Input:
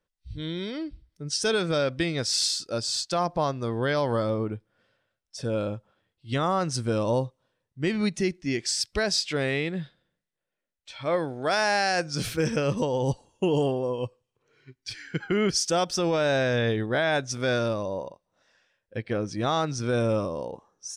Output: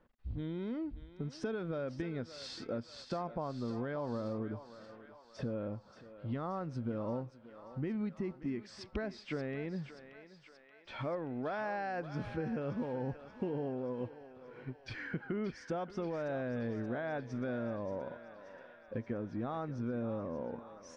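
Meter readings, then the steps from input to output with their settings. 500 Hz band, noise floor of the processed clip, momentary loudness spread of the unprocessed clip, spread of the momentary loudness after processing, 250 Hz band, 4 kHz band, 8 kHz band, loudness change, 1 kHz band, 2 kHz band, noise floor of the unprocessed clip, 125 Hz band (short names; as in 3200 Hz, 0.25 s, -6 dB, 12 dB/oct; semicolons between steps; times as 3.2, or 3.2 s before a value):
-12.5 dB, -60 dBFS, 13 LU, 12 LU, -8.5 dB, -23.0 dB, under -25 dB, -12.5 dB, -13.0 dB, -15.5 dB, -84 dBFS, -10.5 dB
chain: G.711 law mismatch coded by mu; LPF 1500 Hz 12 dB/oct; bell 240 Hz +8.5 dB 0.31 oct; compressor 4:1, threshold -40 dBFS, peak gain reduction 18 dB; on a send: thinning echo 0.579 s, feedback 65%, high-pass 600 Hz, level -10.5 dB; on the sum: gain +2 dB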